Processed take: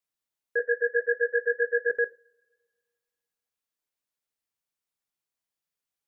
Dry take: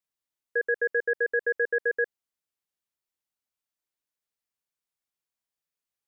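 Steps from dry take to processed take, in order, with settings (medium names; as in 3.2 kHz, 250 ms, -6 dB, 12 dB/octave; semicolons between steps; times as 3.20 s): 0.59–1.90 s: formants replaced by sine waves; two-slope reverb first 0.32 s, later 2 s, from -28 dB, DRR 13 dB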